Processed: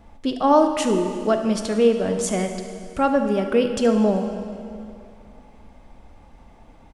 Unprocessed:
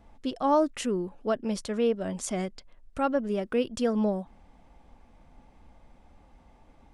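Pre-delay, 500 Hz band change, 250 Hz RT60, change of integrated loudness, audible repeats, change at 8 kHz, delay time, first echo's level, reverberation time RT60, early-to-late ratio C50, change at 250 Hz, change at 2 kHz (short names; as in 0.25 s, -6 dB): 10 ms, +8.5 dB, 2.6 s, +8.0 dB, 1, +8.0 dB, 72 ms, -15.0 dB, 2.6 s, 6.5 dB, +8.0 dB, +8.0 dB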